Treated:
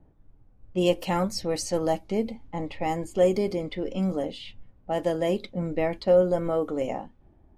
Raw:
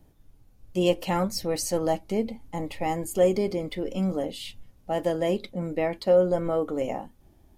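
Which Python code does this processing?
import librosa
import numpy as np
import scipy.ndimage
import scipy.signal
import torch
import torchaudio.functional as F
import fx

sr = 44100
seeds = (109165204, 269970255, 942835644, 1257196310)

y = fx.low_shelf(x, sr, hz=92.0, db=8.5, at=(5.57, 6.22))
y = fx.env_lowpass(y, sr, base_hz=1400.0, full_db=-22.0)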